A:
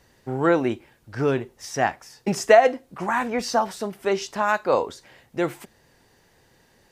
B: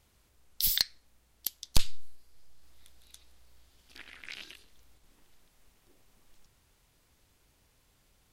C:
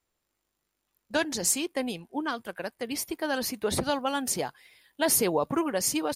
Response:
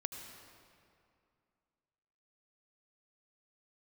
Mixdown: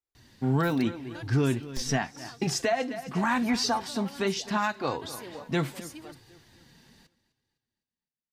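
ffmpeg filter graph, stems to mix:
-filter_complex "[0:a]equalizer=frequency=125:width_type=o:width=1:gain=10,equalizer=frequency=250:width_type=o:width=1:gain=5,equalizer=frequency=500:width_type=o:width=1:gain=-7,equalizer=frequency=4000:width_type=o:width=1:gain=8,bandreject=frequency=1300:width=29,adelay=150,volume=2.5dB,asplit=2[link_01][link_02];[link_02]volume=-17.5dB[link_03];[1:a]acrusher=bits=3:mix=0:aa=0.5,volume=-13dB[link_04];[2:a]volume=-13.5dB[link_05];[link_03]aecho=0:1:255|510|765|1020|1275|1530:1|0.43|0.185|0.0795|0.0342|0.0147[link_06];[link_01][link_04][link_05][link_06]amix=inputs=4:normalize=0,flanger=delay=2.4:depth=2.2:regen=-44:speed=0.8:shape=sinusoidal,alimiter=limit=-16.5dB:level=0:latency=1:release=437"

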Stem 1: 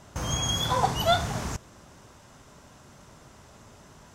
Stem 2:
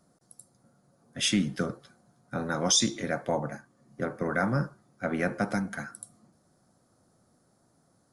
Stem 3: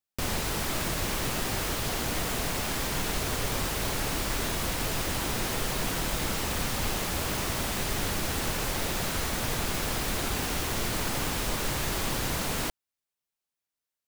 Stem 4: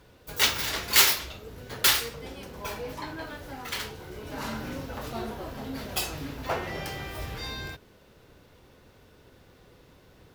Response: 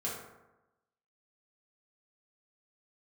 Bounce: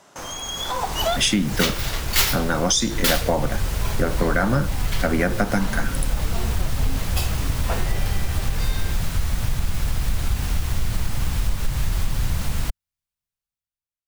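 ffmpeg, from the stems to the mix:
-filter_complex "[0:a]highpass=360,acompressor=threshold=-31dB:ratio=6,volume=1.5dB[link_01];[1:a]volume=1dB,asplit=2[link_02][link_03];[2:a]asubboost=boost=8:cutoff=120,volume=-12.5dB[link_04];[3:a]adelay=1200,volume=-11dB[link_05];[link_03]apad=whole_len=182903[link_06];[link_01][link_06]sidechaincompress=threshold=-44dB:ratio=8:attack=24:release=150[link_07];[link_07][link_02][link_04]amix=inputs=3:normalize=0,acompressor=threshold=-27dB:ratio=6,volume=0dB[link_08];[link_05][link_08]amix=inputs=2:normalize=0,dynaudnorm=framelen=120:gausssize=13:maxgain=11.5dB"

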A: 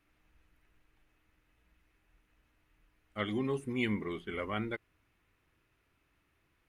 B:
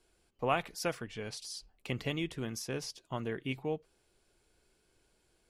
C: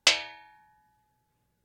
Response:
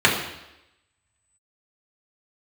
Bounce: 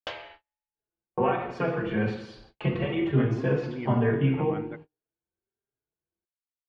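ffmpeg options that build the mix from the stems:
-filter_complex "[0:a]volume=-2.5dB[link_01];[1:a]acompressor=threshold=-36dB:ratio=12,asplit=2[link_02][link_03];[link_03]adelay=4.4,afreqshift=1.2[link_04];[link_02][link_04]amix=inputs=2:normalize=1,adelay=750,volume=3dB,asplit=2[link_05][link_06];[link_06]volume=-4.5dB[link_07];[2:a]volume=-8dB,asplit=2[link_08][link_09];[link_09]volume=-20dB[link_10];[3:a]atrim=start_sample=2205[link_11];[link_07][link_10]amix=inputs=2:normalize=0[link_12];[link_12][link_11]afir=irnorm=-1:irlink=0[link_13];[link_01][link_05][link_08][link_13]amix=inputs=4:normalize=0,agate=range=-38dB:threshold=-43dB:ratio=16:detection=peak,lowpass=1500"

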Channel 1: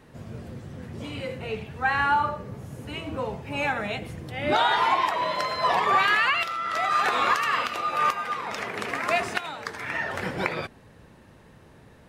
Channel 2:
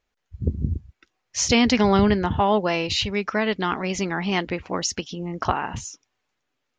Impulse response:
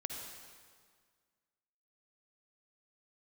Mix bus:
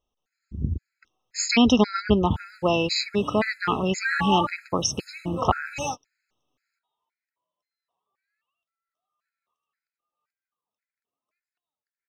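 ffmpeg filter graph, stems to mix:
-filter_complex "[0:a]adynamicequalizer=threshold=0.0112:dfrequency=3800:dqfactor=0.7:tfrequency=3800:tqfactor=0.7:attack=5:release=100:ratio=0.375:range=3:mode=boostabove:tftype=highshelf,adelay=2200,volume=-5.5dB[link_01];[1:a]volume=-2.5dB,asplit=2[link_02][link_03];[link_03]apad=whole_len=630047[link_04];[link_01][link_04]sidechaingate=range=-60dB:threshold=-40dB:ratio=16:detection=peak[link_05];[link_05][link_02]amix=inputs=2:normalize=0,dynaudnorm=framelen=250:gausssize=9:maxgain=5.5dB,afftfilt=real='re*gt(sin(2*PI*1.9*pts/sr)*(1-2*mod(floor(b*sr/1024/1300),2)),0)':imag='im*gt(sin(2*PI*1.9*pts/sr)*(1-2*mod(floor(b*sr/1024/1300),2)),0)':win_size=1024:overlap=0.75"

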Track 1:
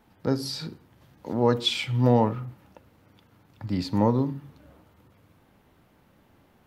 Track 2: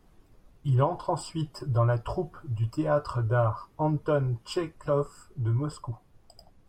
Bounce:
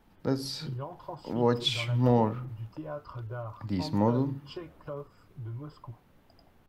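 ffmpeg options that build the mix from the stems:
ffmpeg -i stem1.wav -i stem2.wav -filter_complex "[0:a]volume=-3.5dB[link_01];[1:a]lowpass=frequency=4900:width=0.5412,lowpass=frequency=4900:width=1.3066,acompressor=threshold=-33dB:ratio=2,volume=-7dB[link_02];[link_01][link_02]amix=inputs=2:normalize=0" out.wav

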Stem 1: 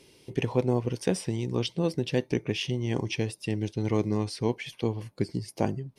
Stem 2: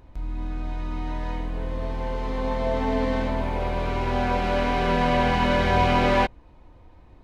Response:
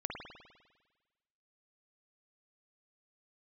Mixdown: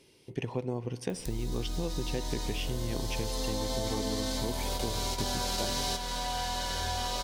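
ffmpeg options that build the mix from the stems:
-filter_complex "[0:a]volume=-5.5dB,asplit=3[link_01][link_02][link_03];[link_02]volume=-16dB[link_04];[1:a]highshelf=frequency=5600:gain=7,aexciter=amount=13.6:drive=4.3:freq=3700,adelay=1100,volume=-8.5dB,asplit=2[link_05][link_06];[link_06]volume=-7dB[link_07];[link_03]apad=whole_len=367635[link_08];[link_05][link_08]sidechaingate=range=-33dB:threshold=-52dB:ratio=16:detection=peak[link_09];[2:a]atrim=start_sample=2205[link_10];[link_04][link_07]amix=inputs=2:normalize=0[link_11];[link_11][link_10]afir=irnorm=-1:irlink=0[link_12];[link_01][link_09][link_12]amix=inputs=3:normalize=0,acompressor=threshold=-28dB:ratio=6"

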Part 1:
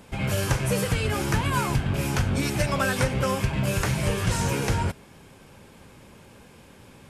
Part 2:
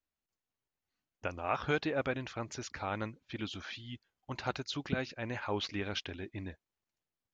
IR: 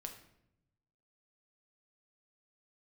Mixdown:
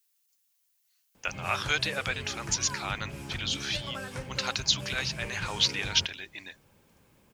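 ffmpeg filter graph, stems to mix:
-filter_complex "[0:a]lowpass=11000,adelay=1150,volume=-16.5dB,asplit=2[link_01][link_02];[link_02]volume=-5.5dB[link_03];[1:a]highpass=frequency=1400:poles=1,crystalizer=i=7.5:c=0,volume=2.5dB[link_04];[2:a]atrim=start_sample=2205[link_05];[link_03][link_05]afir=irnorm=-1:irlink=0[link_06];[link_01][link_04][link_06]amix=inputs=3:normalize=0"

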